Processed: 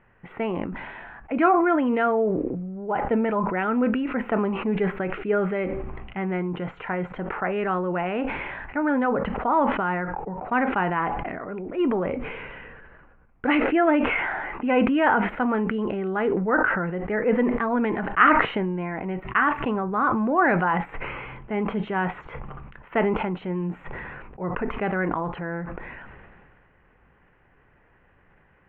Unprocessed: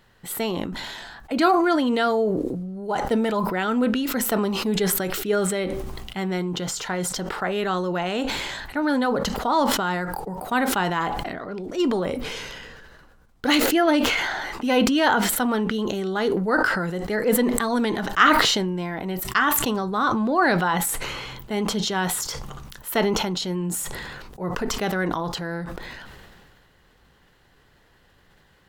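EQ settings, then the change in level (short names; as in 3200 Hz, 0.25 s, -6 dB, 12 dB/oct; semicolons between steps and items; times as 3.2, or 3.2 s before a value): elliptic low-pass 2500 Hz, stop band 50 dB; 0.0 dB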